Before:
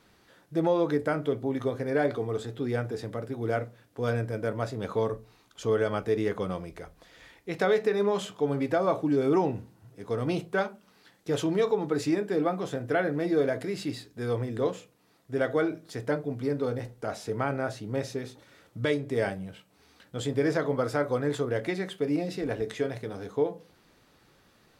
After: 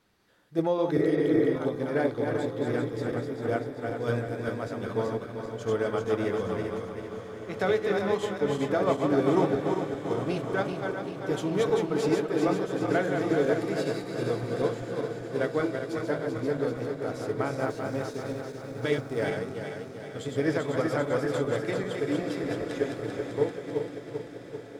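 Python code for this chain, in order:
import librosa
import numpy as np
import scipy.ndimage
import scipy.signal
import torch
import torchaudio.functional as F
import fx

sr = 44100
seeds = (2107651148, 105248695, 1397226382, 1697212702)

y = fx.reverse_delay_fb(x, sr, ms=195, feedback_pct=79, wet_db=-4)
y = fx.spec_repair(y, sr, seeds[0], start_s=1.0, length_s=0.53, low_hz=300.0, high_hz=2500.0, source='before')
y = fx.quant_dither(y, sr, seeds[1], bits=10, dither='none', at=(17.59, 19.3))
y = fx.echo_diffused(y, sr, ms=1788, feedback_pct=44, wet_db=-9.5)
y = fx.upward_expand(y, sr, threshold_db=-35.0, expansion=1.5)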